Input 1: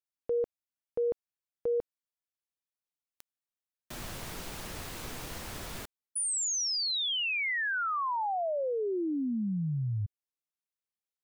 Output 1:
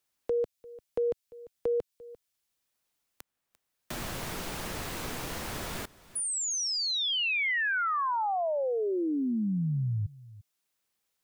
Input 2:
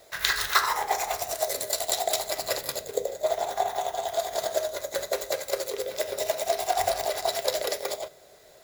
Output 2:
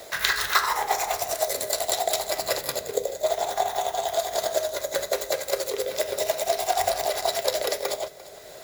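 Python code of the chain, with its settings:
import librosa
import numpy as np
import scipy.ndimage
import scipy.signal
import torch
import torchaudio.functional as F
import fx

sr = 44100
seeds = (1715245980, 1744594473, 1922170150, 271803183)

y = x + 10.0 ** (-22.5 / 20.0) * np.pad(x, (int(346 * sr / 1000.0), 0))[:len(x)]
y = fx.band_squash(y, sr, depth_pct=40)
y = y * librosa.db_to_amplitude(2.0)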